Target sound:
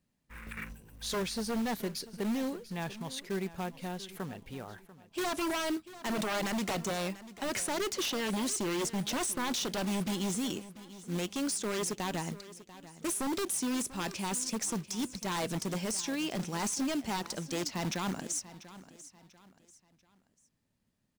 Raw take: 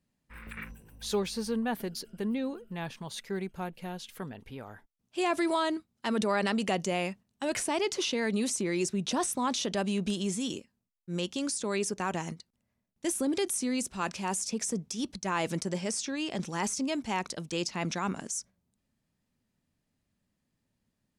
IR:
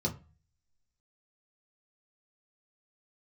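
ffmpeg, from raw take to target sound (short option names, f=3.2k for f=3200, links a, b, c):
-af "aeval=exprs='0.0422*(abs(mod(val(0)/0.0422+3,4)-2)-1)':c=same,acrusher=bits=4:mode=log:mix=0:aa=0.000001,aecho=1:1:691|1382|2073:0.15|0.0524|0.0183"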